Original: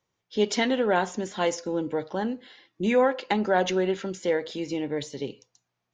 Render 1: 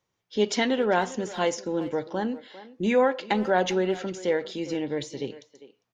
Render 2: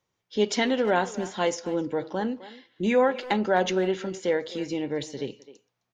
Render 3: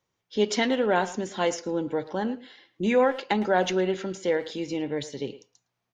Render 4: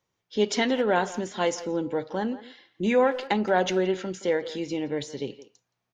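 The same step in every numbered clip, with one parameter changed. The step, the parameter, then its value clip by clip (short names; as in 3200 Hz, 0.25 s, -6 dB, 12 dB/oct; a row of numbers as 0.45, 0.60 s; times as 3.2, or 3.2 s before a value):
speakerphone echo, time: 0.4, 0.26, 0.11, 0.17 s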